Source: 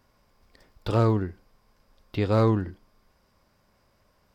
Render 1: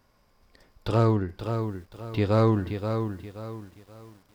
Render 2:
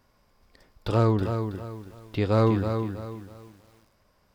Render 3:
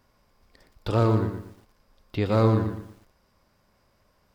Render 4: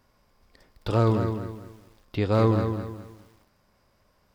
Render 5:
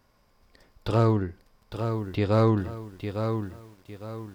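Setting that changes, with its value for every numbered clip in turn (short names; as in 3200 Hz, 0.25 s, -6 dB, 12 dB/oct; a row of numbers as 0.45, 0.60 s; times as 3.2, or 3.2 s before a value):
lo-fi delay, time: 0.528, 0.324, 0.117, 0.209, 0.856 s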